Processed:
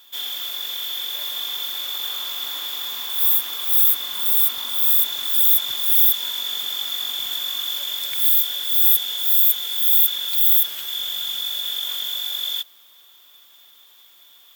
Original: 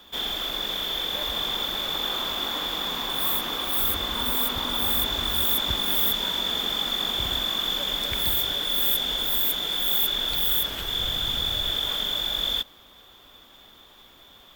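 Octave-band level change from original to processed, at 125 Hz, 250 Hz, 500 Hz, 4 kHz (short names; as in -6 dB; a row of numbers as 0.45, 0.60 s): under -20 dB, under -15 dB, under -10 dB, 0.0 dB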